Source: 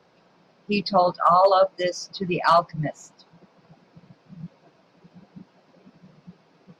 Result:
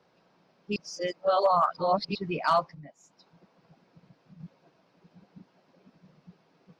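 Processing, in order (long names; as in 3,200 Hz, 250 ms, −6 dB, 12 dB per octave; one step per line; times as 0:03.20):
0:00.76–0:02.15: reverse
0:02.74–0:04.40: downward compressor 3 to 1, threshold −43 dBFS, peak gain reduction 14.5 dB
level −6.5 dB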